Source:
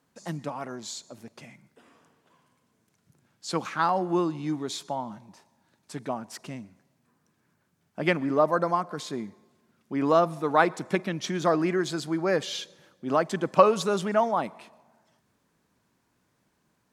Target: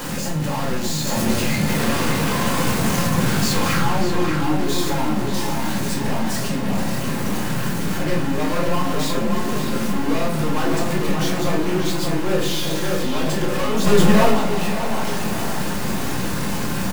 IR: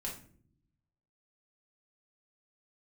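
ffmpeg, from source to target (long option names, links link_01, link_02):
-filter_complex "[0:a]aeval=exprs='val(0)+0.5*0.0891*sgn(val(0))':channel_layout=same,asettb=1/sr,asplit=3[link_01][link_02][link_03];[link_01]atrim=end=1.074[link_04];[link_02]atrim=start=1.07:end=3.79,asetpts=PTS-STARTPTS,afade=type=in:duration=0.004:curve=qsin,afade=type=out:start_time=2.716:duration=0.004:curve=qsin,acontrast=87[link_05];[link_03]atrim=start=3.786[link_06];[link_04][link_05]acrossfade=duration=0.004:curve1=hsin:curve2=qsin[link_07];[link_07][link_06]acrossfade=duration=0.004:curve1=qsin:curve2=hsin,asoftclip=type=tanh:threshold=-21.5dB,aeval=exprs='0.0841*(cos(1*acos(clip(val(0)/0.0841,-1,1)))-cos(1*PI/2))+0.00299*(cos(4*acos(clip(val(0)/0.0841,-1,1)))-cos(4*PI/2))':channel_layout=same,asplit=2[link_08][link_09];[link_09]adelay=584,lowpass=frequency=2600:poles=1,volume=-3.5dB,asplit=2[link_10][link_11];[link_11]adelay=584,lowpass=frequency=2600:poles=1,volume=0.51,asplit=2[link_12][link_13];[link_13]adelay=584,lowpass=frequency=2600:poles=1,volume=0.51,asplit=2[link_14][link_15];[link_15]adelay=584,lowpass=frequency=2600:poles=1,volume=0.51,asplit=2[link_16][link_17];[link_17]adelay=584,lowpass=frequency=2600:poles=1,volume=0.51,asplit=2[link_18][link_19];[link_19]adelay=584,lowpass=frequency=2600:poles=1,volume=0.51,asplit=2[link_20][link_21];[link_21]adelay=584,lowpass=frequency=2600:poles=1,volume=0.51[link_22];[link_08][link_10][link_12][link_14][link_16][link_18][link_20][link_22]amix=inputs=8:normalize=0,asettb=1/sr,asplit=3[link_23][link_24][link_25];[link_23]atrim=end=13.844[link_26];[link_24]atrim=start=13.84:end=14.31,asetpts=PTS-STARTPTS,afade=type=in:duration=0.004:curve=qsin,afade=type=out:start_time=0.466:duration=0.004:curve=qsin,acontrast=73[link_27];[link_25]atrim=start=14.306[link_28];[link_26][link_27]acrossfade=duration=0.004:curve1=hsin:curve2=qsin[link_29];[link_29][link_28]acrossfade=duration=0.004:curve1=qsin:curve2=hsin[link_30];[1:a]atrim=start_sample=2205[link_31];[link_30][link_31]afir=irnorm=-1:irlink=0"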